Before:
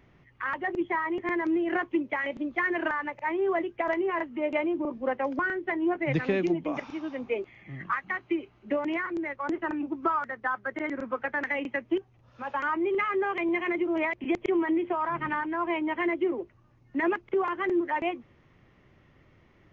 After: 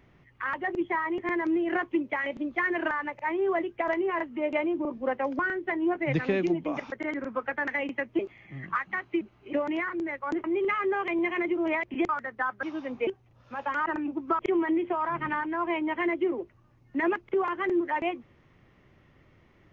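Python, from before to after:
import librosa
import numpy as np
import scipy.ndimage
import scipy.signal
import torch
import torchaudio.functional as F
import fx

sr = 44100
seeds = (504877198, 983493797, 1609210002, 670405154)

y = fx.edit(x, sr, fx.swap(start_s=6.92, length_s=0.44, other_s=10.68, other_length_s=1.27),
    fx.reverse_span(start_s=8.38, length_s=0.32),
    fx.swap(start_s=9.61, length_s=0.53, other_s=12.74, other_length_s=1.65), tone=tone)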